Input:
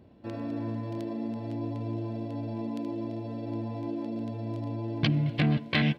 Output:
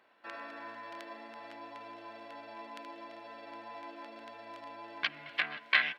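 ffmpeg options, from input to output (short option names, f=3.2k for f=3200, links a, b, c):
-af "highshelf=f=2.4k:g=-11.5,acompressor=threshold=-27dB:ratio=5,highpass=f=1.5k:t=q:w=1.7,volume=8dB"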